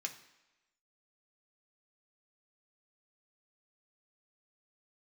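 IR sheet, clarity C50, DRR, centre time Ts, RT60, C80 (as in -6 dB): 12.0 dB, 3.0 dB, 12 ms, 1.0 s, 14.5 dB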